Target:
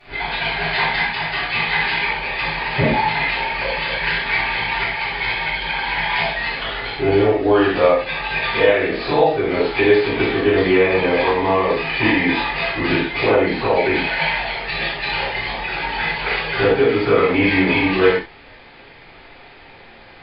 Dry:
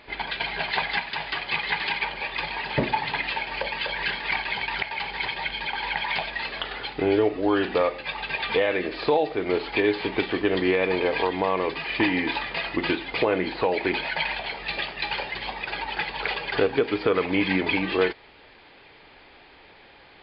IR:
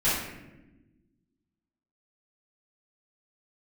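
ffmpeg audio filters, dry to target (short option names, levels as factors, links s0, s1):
-filter_complex "[1:a]atrim=start_sample=2205,afade=t=out:st=0.16:d=0.01,atrim=end_sample=7497,asetrate=34398,aresample=44100[s0];[0:a][s0]afir=irnorm=-1:irlink=0,volume=0.473"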